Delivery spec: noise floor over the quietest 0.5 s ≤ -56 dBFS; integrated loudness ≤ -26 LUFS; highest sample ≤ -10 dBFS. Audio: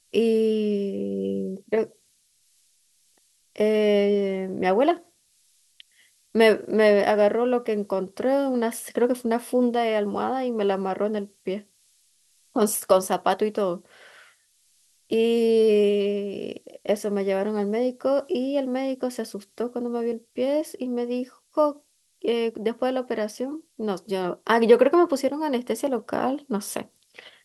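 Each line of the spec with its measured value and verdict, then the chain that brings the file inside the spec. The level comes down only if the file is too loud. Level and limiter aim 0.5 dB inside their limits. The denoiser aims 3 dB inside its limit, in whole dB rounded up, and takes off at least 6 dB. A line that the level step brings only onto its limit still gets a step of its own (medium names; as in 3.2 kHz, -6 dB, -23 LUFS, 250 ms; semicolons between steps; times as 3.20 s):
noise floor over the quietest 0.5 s -65 dBFS: pass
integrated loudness -24.0 LUFS: fail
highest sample -4.5 dBFS: fail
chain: trim -2.5 dB; peak limiter -10.5 dBFS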